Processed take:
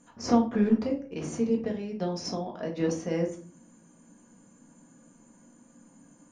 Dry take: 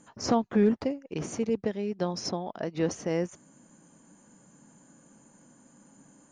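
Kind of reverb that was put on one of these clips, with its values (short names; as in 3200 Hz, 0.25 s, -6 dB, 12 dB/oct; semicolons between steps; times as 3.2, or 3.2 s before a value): shoebox room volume 250 m³, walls furnished, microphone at 1.8 m; gain -4.5 dB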